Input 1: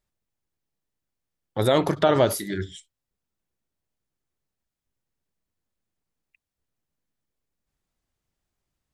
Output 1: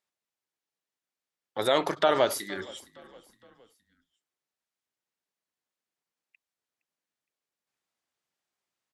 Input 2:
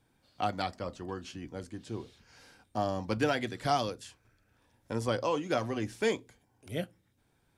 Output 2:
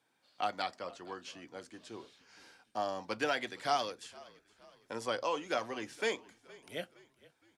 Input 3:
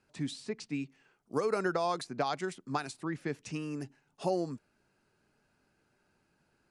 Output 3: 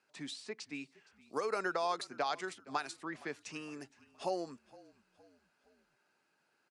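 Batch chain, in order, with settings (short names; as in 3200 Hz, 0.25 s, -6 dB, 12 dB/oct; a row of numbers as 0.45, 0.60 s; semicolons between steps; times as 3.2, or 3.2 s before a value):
weighting filter A; on a send: frequency-shifting echo 0.465 s, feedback 46%, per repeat -39 Hz, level -22 dB; on the sum: gain -1.5 dB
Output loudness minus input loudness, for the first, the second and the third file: -4.0, -3.0, -4.0 LU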